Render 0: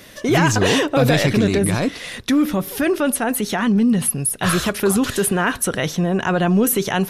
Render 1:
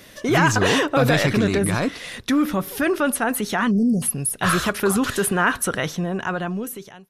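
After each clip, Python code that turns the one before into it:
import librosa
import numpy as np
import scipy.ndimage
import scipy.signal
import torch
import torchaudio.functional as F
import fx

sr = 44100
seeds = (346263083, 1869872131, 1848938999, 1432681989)

y = fx.fade_out_tail(x, sr, length_s=1.43)
y = fx.spec_erase(y, sr, start_s=3.71, length_s=0.31, low_hz=770.0, high_hz=4400.0)
y = fx.dynamic_eq(y, sr, hz=1300.0, q=1.3, threshold_db=-34.0, ratio=4.0, max_db=6)
y = F.gain(torch.from_numpy(y), -3.0).numpy()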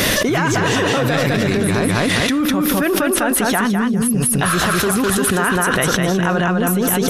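y = np.clip(x, -10.0 ** (-7.5 / 20.0), 10.0 ** (-7.5 / 20.0))
y = fx.echo_feedback(y, sr, ms=204, feedback_pct=23, wet_db=-3)
y = fx.env_flatten(y, sr, amount_pct=100)
y = F.gain(torch.from_numpy(y), -3.5).numpy()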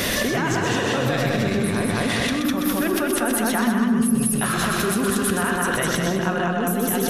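y = x + 10.0 ** (-5.5 / 20.0) * np.pad(x, (int(127 * sr / 1000.0), 0))[:len(x)]
y = fx.rev_fdn(y, sr, rt60_s=1.7, lf_ratio=1.2, hf_ratio=0.35, size_ms=25.0, drr_db=8.5)
y = F.gain(torch.from_numpy(y), -7.0).numpy()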